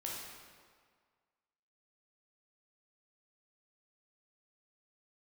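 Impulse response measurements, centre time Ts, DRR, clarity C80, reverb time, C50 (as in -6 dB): 94 ms, -4.0 dB, 2.0 dB, 1.8 s, -0.5 dB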